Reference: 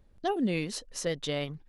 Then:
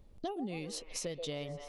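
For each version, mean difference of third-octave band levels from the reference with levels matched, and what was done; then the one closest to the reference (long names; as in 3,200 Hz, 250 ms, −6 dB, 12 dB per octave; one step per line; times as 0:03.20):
5.0 dB: parametric band 1,600 Hz −8.5 dB 0.51 octaves
on a send: echo through a band-pass that steps 129 ms, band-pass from 590 Hz, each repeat 0.7 octaves, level −6.5 dB
on the sum: downward compressor 6 to 1, threshold −39 dBFS, peak gain reduction 14.5 dB
level +2.5 dB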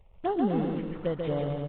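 11.5 dB: variable-slope delta modulation 16 kbit/s
downward compressor 1.5 to 1, threshold −34 dBFS, peak gain reduction 4 dB
phaser swept by the level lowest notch 240 Hz, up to 2,400 Hz, full sweep at −33 dBFS
bouncing-ball delay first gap 140 ms, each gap 0.8×, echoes 5
level +5 dB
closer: first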